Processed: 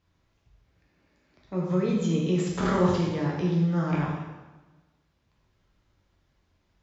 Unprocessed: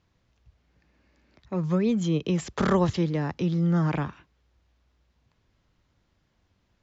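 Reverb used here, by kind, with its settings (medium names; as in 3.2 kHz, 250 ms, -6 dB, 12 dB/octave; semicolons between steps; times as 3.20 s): plate-style reverb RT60 1.2 s, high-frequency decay 0.85×, DRR -3.5 dB; trim -5 dB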